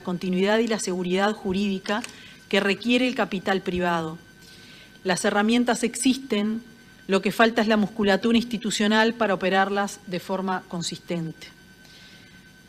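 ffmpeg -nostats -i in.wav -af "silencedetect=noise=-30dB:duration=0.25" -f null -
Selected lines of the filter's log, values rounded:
silence_start: 2.09
silence_end: 2.51 | silence_duration: 0.42
silence_start: 4.14
silence_end: 5.05 | silence_duration: 0.92
silence_start: 6.59
silence_end: 7.09 | silence_duration: 0.50
silence_start: 11.43
silence_end: 12.68 | silence_duration: 1.25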